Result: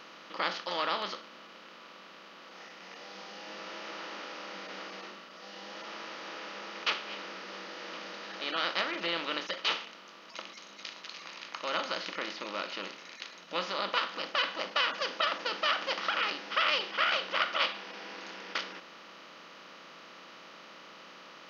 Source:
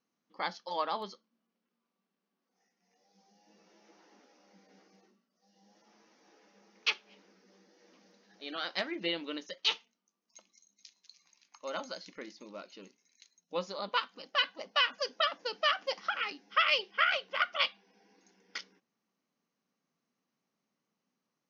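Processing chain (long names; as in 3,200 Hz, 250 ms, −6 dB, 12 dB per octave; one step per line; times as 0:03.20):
compressor on every frequency bin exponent 0.4
level −5.5 dB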